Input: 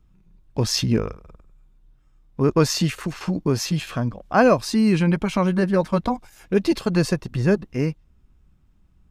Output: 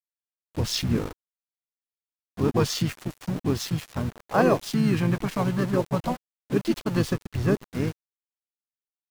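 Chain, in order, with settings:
centre clipping without the shift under −28.5 dBFS
pitch-shifted copies added −7 semitones −6 dB, −5 semitones −7 dB
level −6 dB

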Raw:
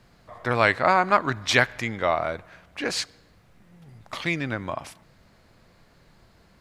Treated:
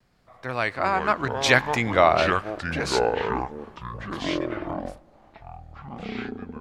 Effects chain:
source passing by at 0:02.08, 12 m/s, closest 4.6 metres
delay with pitch and tempo change per echo 148 ms, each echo −6 semitones, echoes 3, each echo −6 dB
pitch vibrato 0.53 Hz 23 cents
level +6 dB

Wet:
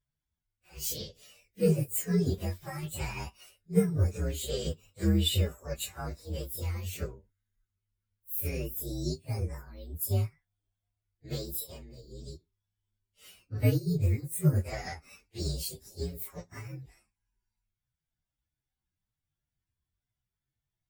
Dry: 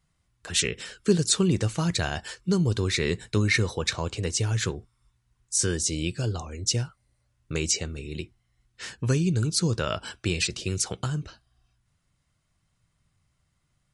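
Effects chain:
partials spread apart or drawn together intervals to 124%
time stretch by phase vocoder 1.5×
expander for the loud parts 1.5 to 1, over −48 dBFS
level +3.5 dB

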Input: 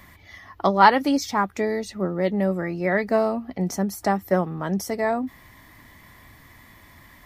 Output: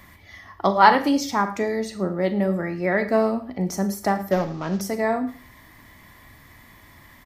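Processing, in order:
0:04.31–0:04.81: variable-slope delta modulation 32 kbit/s
single-tap delay 109 ms −21 dB
four-comb reverb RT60 0.39 s, combs from 28 ms, DRR 9 dB

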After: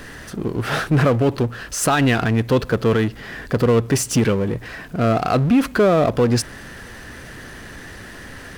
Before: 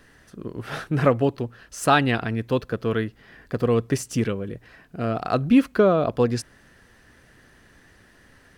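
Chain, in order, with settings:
brickwall limiter −15 dBFS, peak gain reduction 10 dB
power curve on the samples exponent 0.7
level +6 dB

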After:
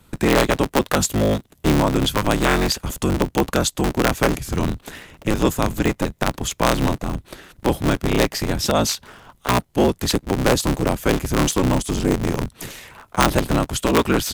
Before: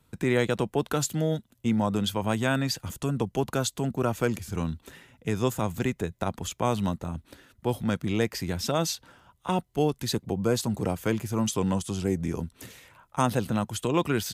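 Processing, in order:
sub-harmonics by changed cycles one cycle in 3, inverted
in parallel at −1 dB: downward compressor, threshold −38 dBFS, peak gain reduction 18.5 dB
on the sum: level +6.5 dB

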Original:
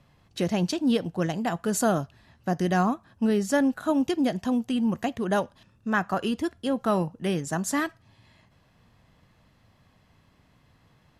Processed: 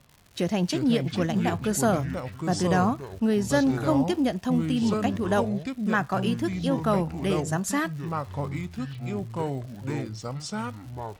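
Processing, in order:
surface crackle 140 per second −40 dBFS
delay with pitch and tempo change per echo 204 ms, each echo −5 semitones, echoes 3, each echo −6 dB

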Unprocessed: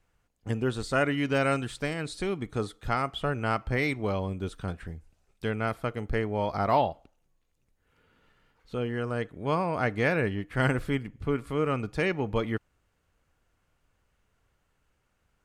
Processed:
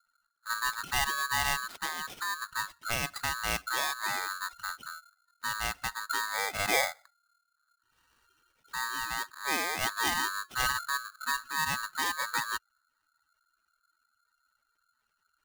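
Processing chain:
gate on every frequency bin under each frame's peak −15 dB strong
sample-rate reduction 6,000 Hz, jitter 0%
ring modulator with a square carrier 1,400 Hz
level −3.5 dB

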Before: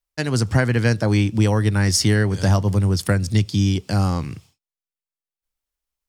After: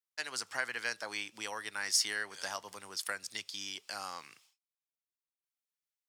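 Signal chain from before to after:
high-pass filter 1,100 Hz 12 dB per octave
level −8.5 dB

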